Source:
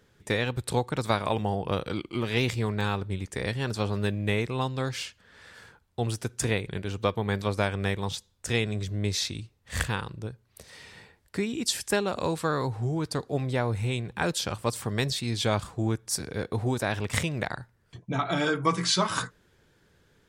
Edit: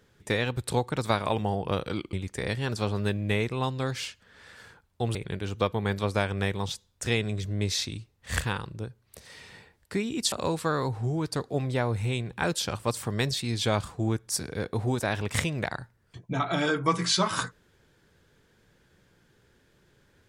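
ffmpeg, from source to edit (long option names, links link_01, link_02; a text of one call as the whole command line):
ffmpeg -i in.wav -filter_complex "[0:a]asplit=4[link_01][link_02][link_03][link_04];[link_01]atrim=end=2.132[link_05];[link_02]atrim=start=3.108:end=6.132[link_06];[link_03]atrim=start=6.578:end=11.752[link_07];[link_04]atrim=start=12.108[link_08];[link_05][link_06]acrossfade=duration=0.004:curve1=hsin:curve2=hsin[link_09];[link_09][link_07]acrossfade=duration=0.004:curve1=hsin:curve2=hsin[link_10];[link_10][link_08]acrossfade=duration=0.004:curve1=hsin:curve2=hsin" out.wav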